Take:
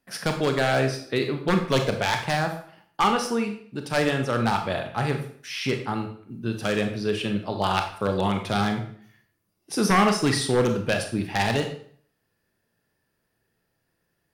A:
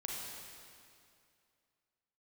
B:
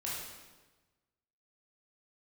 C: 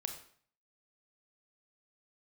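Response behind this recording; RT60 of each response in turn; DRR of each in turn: C; 2.4, 1.2, 0.50 seconds; −3.0, −6.5, 4.5 decibels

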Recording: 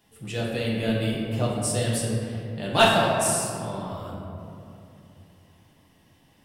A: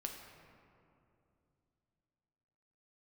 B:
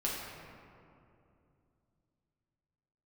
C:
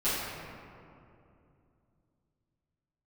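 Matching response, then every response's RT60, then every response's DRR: B; 2.7, 2.6, 2.6 seconds; 1.5, −5.5, −15.0 decibels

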